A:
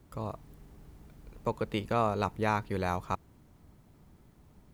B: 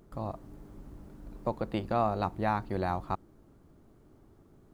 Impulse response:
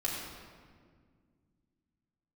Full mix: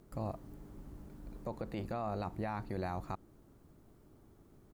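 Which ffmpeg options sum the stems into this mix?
-filter_complex "[0:a]highshelf=frequency=4600:gain=10.5,acompressor=threshold=-32dB:ratio=6,volume=-13.5dB[link_01];[1:a]adelay=0.4,volume=-3dB[link_02];[link_01][link_02]amix=inputs=2:normalize=0,alimiter=level_in=5dB:limit=-24dB:level=0:latency=1:release=31,volume=-5dB"

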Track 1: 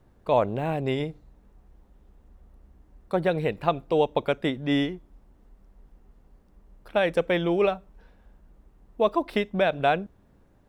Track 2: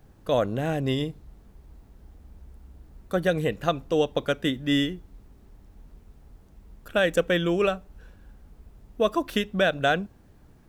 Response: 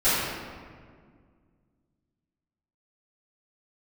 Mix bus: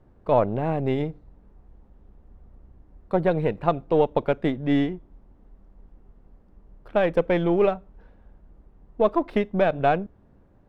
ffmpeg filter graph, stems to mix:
-filter_complex "[0:a]volume=3dB[link_01];[1:a]aeval=exprs='abs(val(0))':channel_layout=same,volume=-11dB[link_02];[link_01][link_02]amix=inputs=2:normalize=0,lowpass=frequency=1200:poles=1"

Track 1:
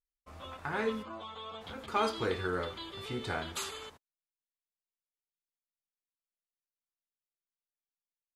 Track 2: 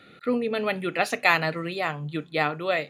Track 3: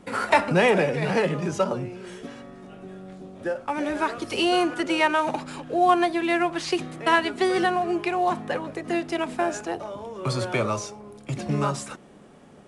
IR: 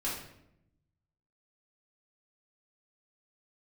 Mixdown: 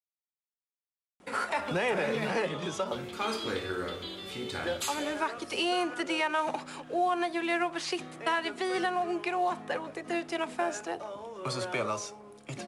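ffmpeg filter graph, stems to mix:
-filter_complex "[0:a]equalizer=frequency=1000:width_type=o:width=2.1:gain=-8,adelay=1250,volume=2.5dB,asplit=2[link_01][link_02];[link_02]volume=-7dB[link_03];[2:a]adelay=1200,volume=-3.5dB[link_04];[3:a]atrim=start_sample=2205[link_05];[link_03][link_05]afir=irnorm=-1:irlink=0[link_06];[link_01][link_04][link_06]amix=inputs=3:normalize=0,lowshelf=frequency=250:gain=-11,alimiter=limit=-20dB:level=0:latency=1:release=138"

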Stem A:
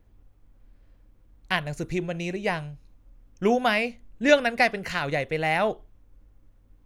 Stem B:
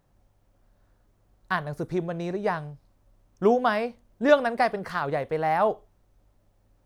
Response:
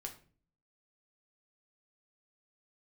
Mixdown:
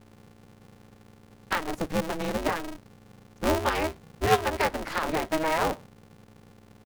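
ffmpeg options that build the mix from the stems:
-filter_complex "[0:a]volume=-10.5dB[link_01];[1:a]acompressor=threshold=-26dB:ratio=2.5,adelay=9.1,volume=1.5dB[link_02];[link_01][link_02]amix=inputs=2:normalize=0,aeval=exprs='val(0)+0.00224*(sin(2*PI*60*n/s)+sin(2*PI*2*60*n/s)/2+sin(2*PI*3*60*n/s)/3+sin(2*PI*4*60*n/s)/4+sin(2*PI*5*60*n/s)/5)':channel_layout=same,aeval=exprs='val(0)*sgn(sin(2*PI*160*n/s))':channel_layout=same"

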